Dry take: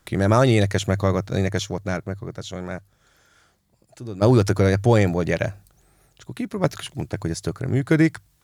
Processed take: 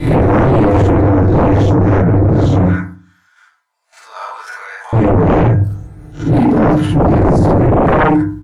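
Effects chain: reverse spectral sustain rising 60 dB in 0.31 s; dynamic bell 4.6 kHz, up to -4 dB, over -41 dBFS, Q 0.83; compression 6:1, threshold -26 dBFS, peak gain reduction 14 dB; 2.63–4.93 s: inverse Chebyshev high-pass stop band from 320 Hz, stop band 60 dB; gate -56 dBFS, range -9 dB; tilt EQ -3.5 dB/octave; early reflections 50 ms -3 dB, 60 ms -8.5 dB, 73 ms -11 dB; FDN reverb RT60 0.39 s, low-frequency decay 1.4×, high-frequency decay 0.35×, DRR -4.5 dB; sine folder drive 14 dB, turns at 2.5 dBFS; trim -9 dB

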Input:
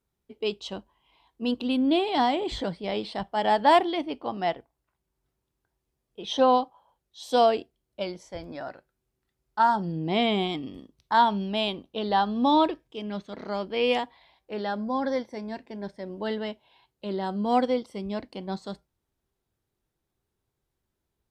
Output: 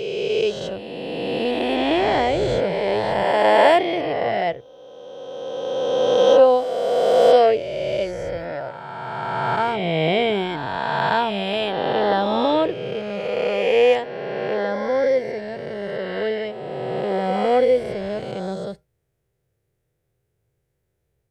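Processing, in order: reverse spectral sustain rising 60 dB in 2.93 s; graphic EQ 125/250/500/1000/2000/4000 Hz +11/-8/+11/-8/+5/-5 dB

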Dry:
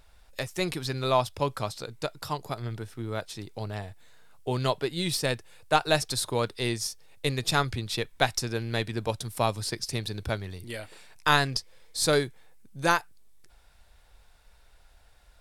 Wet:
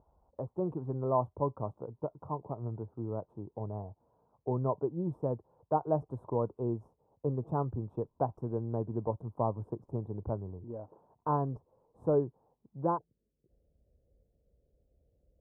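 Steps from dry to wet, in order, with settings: elliptic low-pass 1 kHz, stop band 50 dB, from 12.97 s 540 Hz; dynamic bell 770 Hz, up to -3 dB, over -40 dBFS, Q 1.6; high-pass 71 Hz; trim -2 dB

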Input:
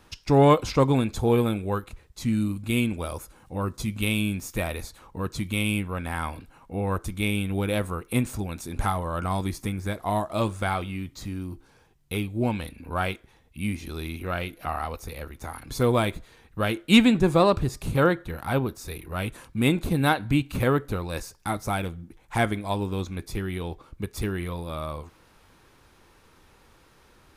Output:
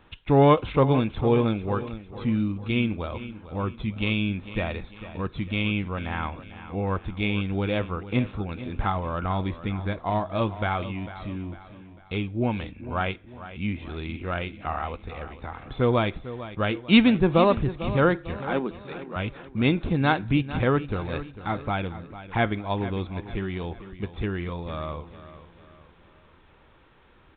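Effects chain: 18.36–19.16 s: Chebyshev high-pass 180 Hz, order 4; on a send: feedback delay 449 ms, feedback 43%, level -14 dB; on the sum: resampled via 8 kHz

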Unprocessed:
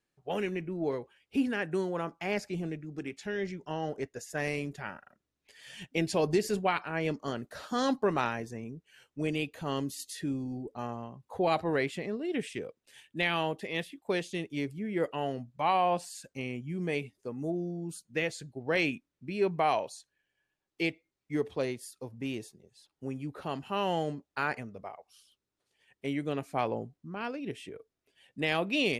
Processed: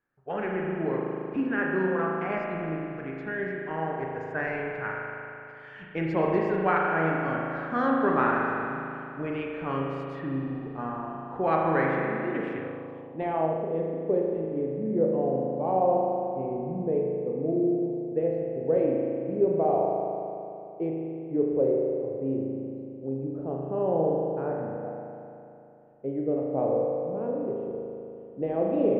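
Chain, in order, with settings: spring tank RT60 2.9 s, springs 37 ms, chirp 45 ms, DRR -2 dB; low-pass sweep 1.5 kHz -> 530 Hz, 12.62–13.70 s; trim -1 dB

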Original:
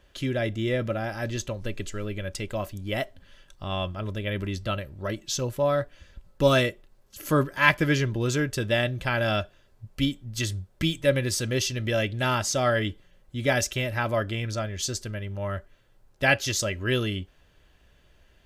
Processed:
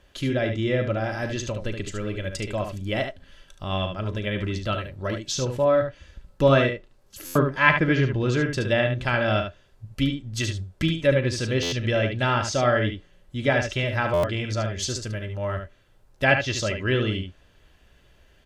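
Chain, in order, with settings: low-pass that closes with the level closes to 2.7 kHz, closed at -20 dBFS; early reflections 38 ms -14.5 dB, 73 ms -7 dB; buffer glitch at 7.25/11.62/14.13 s, samples 512, times 8; trim +2 dB

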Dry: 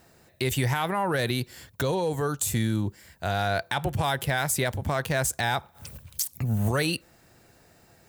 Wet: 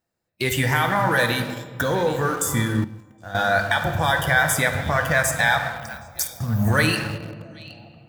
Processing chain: spectral noise reduction 24 dB; 0.72–1.34 s: treble shelf 9.2 kHz +7 dB; repeats whose band climbs or falls 769 ms, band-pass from 3.3 kHz, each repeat -1.4 oct, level -11.5 dB; on a send at -3.5 dB: reverberation RT60 2.1 s, pre-delay 3 ms; on the sum: dynamic bell 1.8 kHz, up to +7 dB, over -41 dBFS, Q 1.2; in parallel at -8 dB: small samples zeroed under -28.5 dBFS; 2.84–3.35 s: on the sum: feedback comb 260 Hz, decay 0.69 s, mix 80%

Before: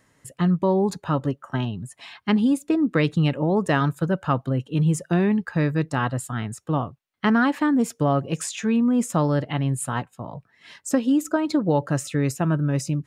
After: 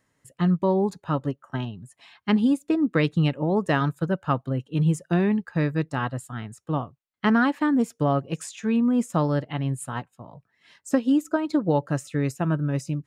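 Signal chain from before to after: upward expansion 1.5:1, over -34 dBFS

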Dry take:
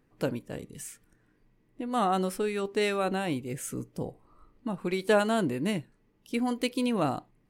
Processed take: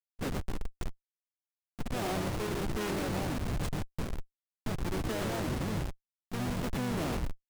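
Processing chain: frequency-shifting echo 114 ms, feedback 32%, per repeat -64 Hz, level -6.5 dB; Schmitt trigger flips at -31 dBFS; harmony voices -12 st -2 dB, -4 st -6 dB; trim -5 dB

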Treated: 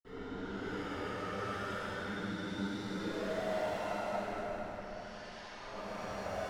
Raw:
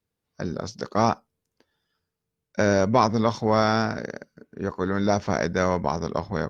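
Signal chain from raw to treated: high-pass 770 Hz 6 dB/octave; low-pass that closes with the level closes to 1 kHz, closed at -20 dBFS; valve stage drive 36 dB, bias 0.75; Paulstretch 13×, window 0.05 s, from 4.85 s; reverberation RT60 4.6 s, pre-delay 46 ms, DRR -60 dB; trim +5 dB

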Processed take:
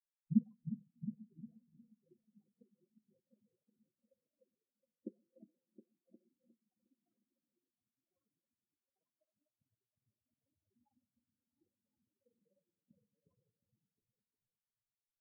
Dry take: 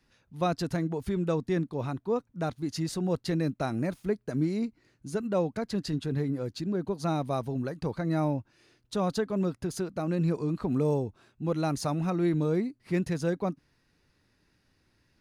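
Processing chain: dynamic bell 160 Hz, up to -8 dB, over -43 dBFS, Q 0.87; inverted gate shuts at -33 dBFS, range -27 dB; granulator 41 ms, grains 20 per s, spray 25 ms, pitch spread up and down by 12 st; delay with an opening low-pass 358 ms, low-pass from 200 Hz, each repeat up 2 oct, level 0 dB; on a send at -4 dB: reverberation RT60 3.0 s, pre-delay 4 ms; on the sum: spectral contrast expander 4:1; trim +14.5 dB

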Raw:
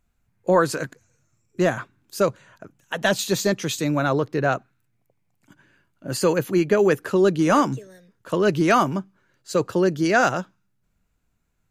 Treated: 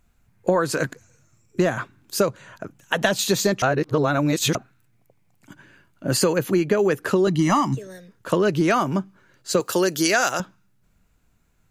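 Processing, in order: 3.62–4.55 s: reverse; 7.27–7.75 s: comb 1 ms, depth 96%; 9.60–10.40 s: RIAA curve recording; compression 6:1, threshold -24 dBFS, peak gain reduction 13 dB; trim +7.5 dB

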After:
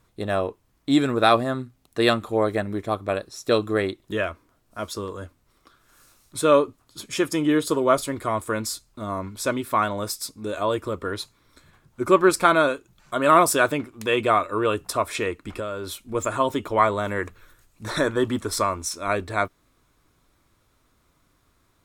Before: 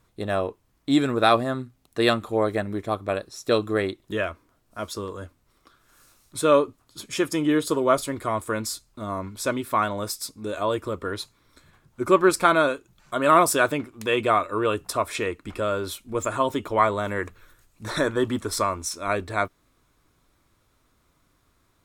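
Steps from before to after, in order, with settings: 15.40–16.06 s: compression, threshold -28 dBFS, peak gain reduction 7 dB; trim +1 dB

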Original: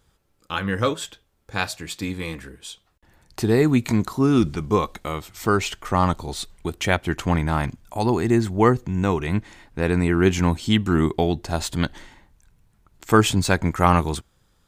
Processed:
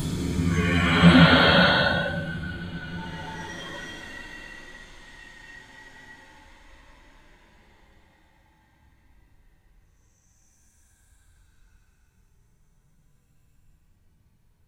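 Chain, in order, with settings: gated-style reverb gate 180 ms flat, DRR 11 dB; Paulstretch 16×, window 0.10 s, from 11.75 s; spectral noise reduction 11 dB; trim +8.5 dB

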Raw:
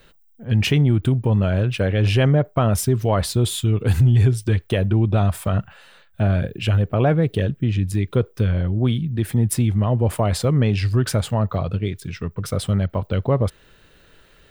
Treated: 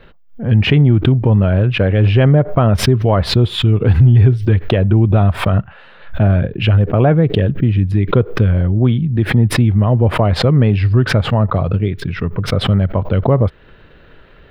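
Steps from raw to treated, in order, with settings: in parallel at -2 dB: compression, threshold -28 dBFS, peak gain reduction 15 dB; on the sum: distance through air 380 m; swell ahead of each attack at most 140 dB/s; trim +5 dB

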